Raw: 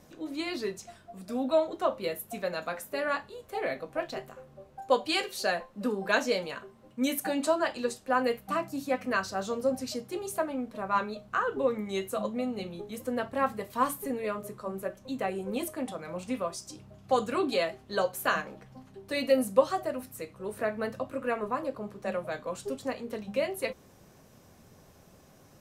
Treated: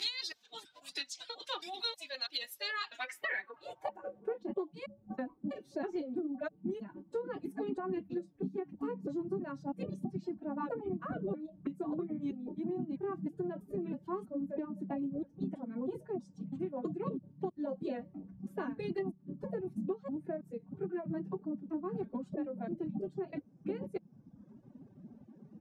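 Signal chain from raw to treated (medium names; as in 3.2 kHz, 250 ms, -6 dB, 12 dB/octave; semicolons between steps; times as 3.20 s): slices played last to first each 324 ms, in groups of 2; reverb removal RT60 1.1 s; formant-preserving pitch shift +6.5 st; band-pass sweep 3.9 kHz -> 210 Hz, 2.80–4.71 s; compression 8:1, threshold -45 dBFS, peak gain reduction 17.5 dB; trim +11.5 dB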